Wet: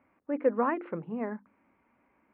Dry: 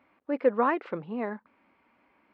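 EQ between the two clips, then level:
low-pass filter 2,500 Hz 24 dB per octave
low-shelf EQ 280 Hz +8.5 dB
mains-hum notches 50/100/150/200/250/300/350 Hz
−4.5 dB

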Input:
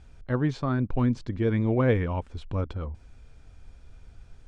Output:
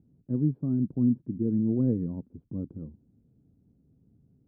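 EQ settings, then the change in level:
flat-topped band-pass 210 Hz, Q 1.2
high-frequency loss of the air 220 metres
+2.5 dB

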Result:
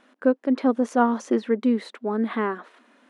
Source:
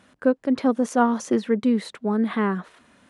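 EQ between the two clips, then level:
linear-phase brick-wall high-pass 210 Hz
high-shelf EQ 5,600 Hz −11.5 dB
0.0 dB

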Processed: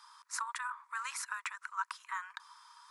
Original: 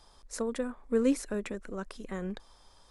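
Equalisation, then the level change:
Chebyshev high-pass with heavy ripple 940 Hz, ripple 3 dB
high-shelf EQ 2,100 Hz −11.5 dB
parametric band 3,300 Hz −6.5 dB 0.86 octaves
+14.5 dB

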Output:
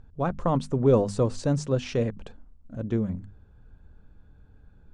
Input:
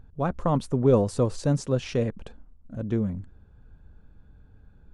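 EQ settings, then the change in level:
low-pass filter 8,900 Hz 24 dB per octave
mains-hum notches 50/100/150/200/250 Hz
0.0 dB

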